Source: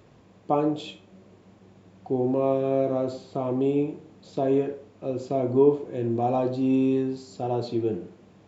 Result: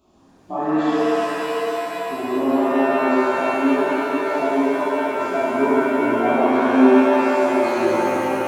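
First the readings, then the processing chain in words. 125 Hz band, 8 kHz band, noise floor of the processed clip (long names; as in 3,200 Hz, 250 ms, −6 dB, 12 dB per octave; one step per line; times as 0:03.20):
−7.5 dB, can't be measured, −52 dBFS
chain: multi-voice chorus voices 2, 1 Hz, delay 15 ms, depth 3.7 ms
phaser with its sweep stopped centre 490 Hz, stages 6
reverb with rising layers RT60 3.9 s, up +7 semitones, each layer −2 dB, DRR −10.5 dB
level −1 dB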